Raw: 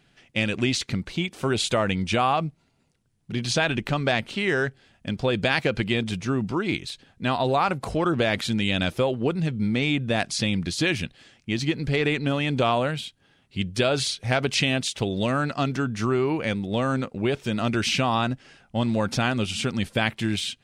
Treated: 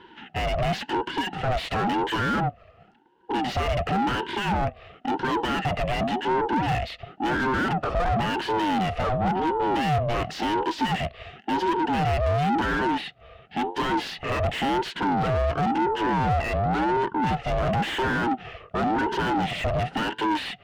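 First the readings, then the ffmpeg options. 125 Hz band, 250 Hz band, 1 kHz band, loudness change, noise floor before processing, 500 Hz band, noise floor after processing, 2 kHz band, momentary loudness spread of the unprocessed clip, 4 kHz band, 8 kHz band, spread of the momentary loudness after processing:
-2.0 dB, -1.5 dB, +5.5 dB, -0.5 dB, -65 dBFS, -1.0 dB, -53 dBFS, -1.5 dB, 7 LU, -5.0 dB, -11.5 dB, 6 LU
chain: -filter_complex "[0:a]asplit=3[a][b][c];[a]bandpass=f=300:t=q:w=8,volume=0dB[d];[b]bandpass=f=870:t=q:w=8,volume=-6dB[e];[c]bandpass=f=2.24k:t=q:w=8,volume=-9dB[f];[d][e][f]amix=inputs=3:normalize=0,asplit=2[g][h];[h]highpass=f=720:p=1,volume=38dB,asoftclip=type=tanh:threshold=-18.5dB[i];[g][i]amix=inputs=2:normalize=0,lowpass=f=1.1k:p=1,volume=-6dB,aeval=exprs='val(0)*sin(2*PI*510*n/s+510*0.3/0.94*sin(2*PI*0.94*n/s))':c=same,volume=5.5dB"

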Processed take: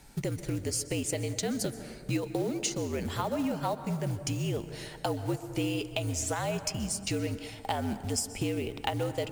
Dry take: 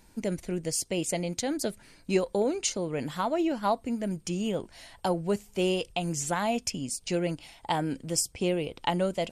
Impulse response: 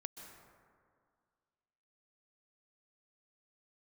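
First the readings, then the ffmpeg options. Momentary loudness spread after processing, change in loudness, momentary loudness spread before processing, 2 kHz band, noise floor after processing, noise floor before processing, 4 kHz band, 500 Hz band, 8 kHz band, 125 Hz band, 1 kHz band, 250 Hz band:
4 LU, -2.5 dB, 6 LU, -2.0 dB, -46 dBFS, -58 dBFS, -2.0 dB, -4.5 dB, -1.5 dB, +2.5 dB, -4.5 dB, -2.5 dB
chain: -filter_complex "[0:a]acontrast=45,acrusher=bits=5:mode=log:mix=0:aa=0.000001,afreqshift=-62,acompressor=threshold=-29dB:ratio=3,asplit=2[a][b];[1:a]atrim=start_sample=2205[c];[b][c]afir=irnorm=-1:irlink=0,volume=3dB[d];[a][d]amix=inputs=2:normalize=0,volume=-6.5dB"

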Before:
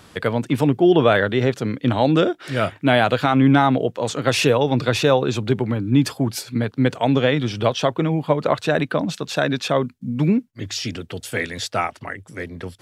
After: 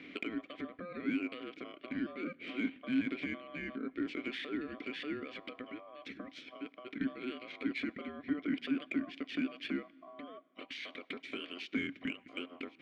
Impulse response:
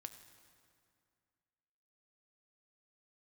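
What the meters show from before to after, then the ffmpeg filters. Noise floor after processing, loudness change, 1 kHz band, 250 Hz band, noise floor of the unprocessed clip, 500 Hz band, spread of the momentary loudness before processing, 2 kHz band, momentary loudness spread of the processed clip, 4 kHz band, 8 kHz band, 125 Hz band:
-62 dBFS, -20.0 dB, -27.5 dB, -16.5 dB, -50 dBFS, -26.5 dB, 11 LU, -16.5 dB, 12 LU, -19.0 dB, under -30 dB, -33.5 dB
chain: -filter_complex "[0:a]alimiter=limit=-16dB:level=0:latency=1:release=32,acompressor=threshold=-35dB:ratio=6,aeval=exprs='val(0)*sin(2*PI*880*n/s)':c=same,asplit=3[a][b][c];[a]bandpass=f=270:t=q:w=8,volume=0dB[d];[b]bandpass=f=2.29k:t=q:w=8,volume=-6dB[e];[c]bandpass=f=3.01k:t=q:w=8,volume=-9dB[f];[d][e][f]amix=inputs=3:normalize=0,adynamicsmooth=sensitivity=7.5:basefreq=2.7k,asplit=2[g][h];[1:a]atrim=start_sample=2205[i];[h][i]afir=irnorm=-1:irlink=0,volume=-6.5dB[j];[g][j]amix=inputs=2:normalize=0,volume=16.5dB"

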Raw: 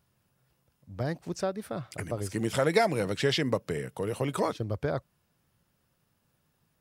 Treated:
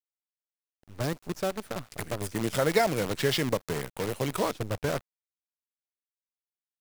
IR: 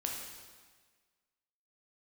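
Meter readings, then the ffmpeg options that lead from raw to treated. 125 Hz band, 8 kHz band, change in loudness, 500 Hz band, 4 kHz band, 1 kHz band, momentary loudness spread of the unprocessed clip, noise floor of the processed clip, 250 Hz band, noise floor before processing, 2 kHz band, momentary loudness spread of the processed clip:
-0.5 dB, +4.0 dB, +0.5 dB, 0.0 dB, +1.5 dB, +0.5 dB, 11 LU, under -85 dBFS, 0.0 dB, -74 dBFS, +1.0 dB, 10 LU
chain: -af "acrusher=bits=6:dc=4:mix=0:aa=0.000001"

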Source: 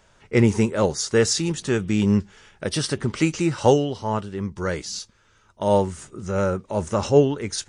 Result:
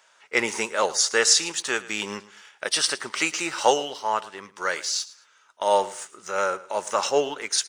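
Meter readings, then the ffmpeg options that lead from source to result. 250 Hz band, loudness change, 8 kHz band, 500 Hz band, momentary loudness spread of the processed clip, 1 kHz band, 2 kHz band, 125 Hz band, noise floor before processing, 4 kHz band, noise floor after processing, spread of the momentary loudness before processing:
-14.5 dB, -1.5 dB, +5.5 dB, -4.5 dB, 12 LU, +3.0 dB, +5.5 dB, -25.5 dB, -59 dBFS, +5.5 dB, -60 dBFS, 10 LU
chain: -filter_complex "[0:a]highpass=860,asplit=2[a][b];[b]aeval=exprs='sgn(val(0))*max(abs(val(0))-0.00473,0)':c=same,volume=-5dB[c];[a][c]amix=inputs=2:normalize=0,aecho=1:1:110|220:0.119|0.0333,volume=2dB"

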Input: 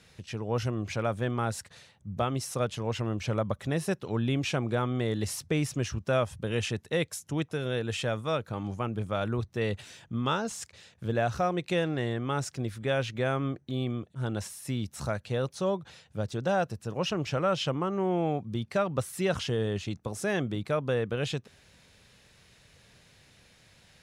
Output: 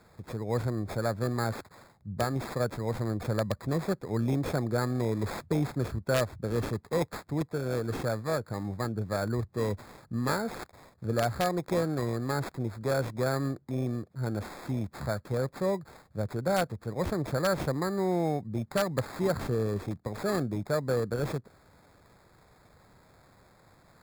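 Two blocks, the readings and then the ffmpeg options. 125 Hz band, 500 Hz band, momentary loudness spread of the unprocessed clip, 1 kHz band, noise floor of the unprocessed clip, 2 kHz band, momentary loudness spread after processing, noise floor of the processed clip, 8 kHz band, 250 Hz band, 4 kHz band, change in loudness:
0.0 dB, 0.0 dB, 6 LU, -1.0 dB, -61 dBFS, -2.0 dB, 6 LU, -61 dBFS, -4.0 dB, 0.0 dB, -5.5 dB, -0.5 dB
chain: -filter_complex "[0:a]acrossover=split=440|930[a][b][c];[b]aeval=exprs='(mod(15.8*val(0)+1,2)-1)/15.8':c=same[d];[c]acrusher=samples=15:mix=1:aa=0.000001[e];[a][d][e]amix=inputs=3:normalize=0"

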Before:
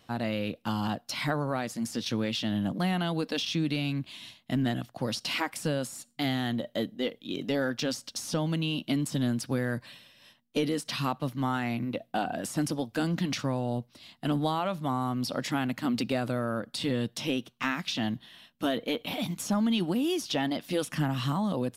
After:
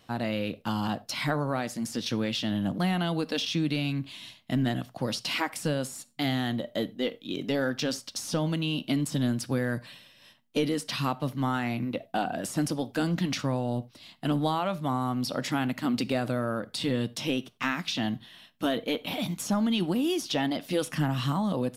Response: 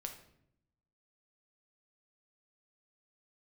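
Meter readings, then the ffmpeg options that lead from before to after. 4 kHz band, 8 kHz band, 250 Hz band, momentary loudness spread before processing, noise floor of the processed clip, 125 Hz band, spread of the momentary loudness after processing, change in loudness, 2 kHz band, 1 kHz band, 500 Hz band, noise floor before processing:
+1.0 dB, +1.0 dB, +1.0 dB, 5 LU, -60 dBFS, +1.5 dB, 5 LU, +1.0 dB, +1.0 dB, +1.0 dB, +1.0 dB, -66 dBFS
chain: -filter_complex "[0:a]asplit=2[a][b];[1:a]atrim=start_sample=2205,atrim=end_sample=4410[c];[b][c]afir=irnorm=-1:irlink=0,volume=-5.5dB[d];[a][d]amix=inputs=2:normalize=0,volume=-1.5dB"

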